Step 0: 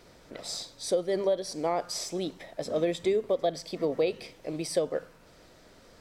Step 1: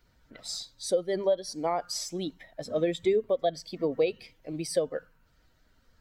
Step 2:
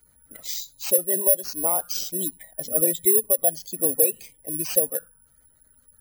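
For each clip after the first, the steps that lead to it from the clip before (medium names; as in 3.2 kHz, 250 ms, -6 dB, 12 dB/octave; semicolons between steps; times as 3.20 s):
expander on every frequency bin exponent 1.5; trim +2.5 dB
spectral gate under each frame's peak -25 dB strong; careless resampling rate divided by 4×, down none, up zero stuff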